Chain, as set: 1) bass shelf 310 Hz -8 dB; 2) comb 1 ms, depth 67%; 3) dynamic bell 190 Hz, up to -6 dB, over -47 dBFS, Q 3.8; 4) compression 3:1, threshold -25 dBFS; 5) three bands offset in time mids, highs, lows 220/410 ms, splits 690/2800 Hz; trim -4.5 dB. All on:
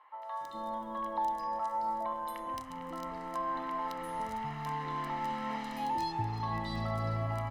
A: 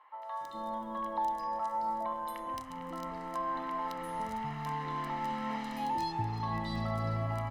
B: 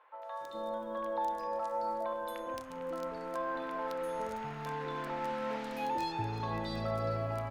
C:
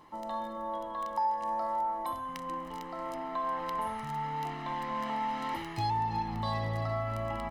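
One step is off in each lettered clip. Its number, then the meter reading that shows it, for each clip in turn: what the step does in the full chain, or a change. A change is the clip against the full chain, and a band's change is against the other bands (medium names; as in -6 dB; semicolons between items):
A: 3, 250 Hz band +1.5 dB; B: 2, 500 Hz band +7.0 dB; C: 5, echo-to-direct -5.5 dB to none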